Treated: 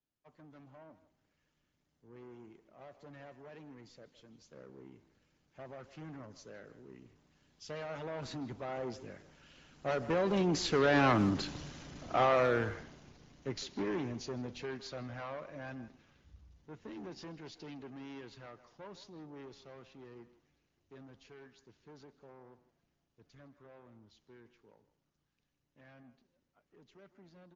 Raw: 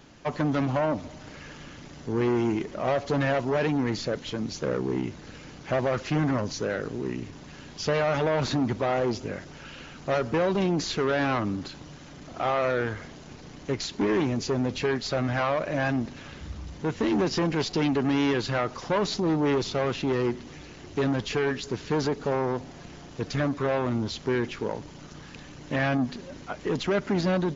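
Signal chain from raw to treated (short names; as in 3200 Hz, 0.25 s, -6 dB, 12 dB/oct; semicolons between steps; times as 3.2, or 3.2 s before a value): Doppler pass-by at 11.58, 8 m/s, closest 4.8 m; speakerphone echo 0.16 s, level -13 dB; three-band expander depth 40%; gain -2 dB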